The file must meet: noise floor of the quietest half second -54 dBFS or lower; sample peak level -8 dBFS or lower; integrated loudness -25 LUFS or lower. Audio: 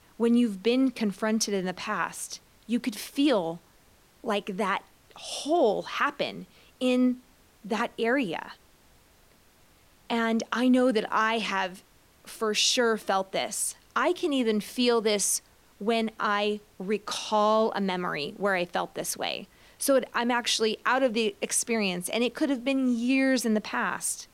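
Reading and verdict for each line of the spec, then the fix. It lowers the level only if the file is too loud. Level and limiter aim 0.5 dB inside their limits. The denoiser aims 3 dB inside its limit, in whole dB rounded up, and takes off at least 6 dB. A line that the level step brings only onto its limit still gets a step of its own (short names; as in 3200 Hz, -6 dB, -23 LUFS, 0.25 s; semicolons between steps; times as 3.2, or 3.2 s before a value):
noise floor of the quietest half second -60 dBFS: OK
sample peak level -11.0 dBFS: OK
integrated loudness -27.0 LUFS: OK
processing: none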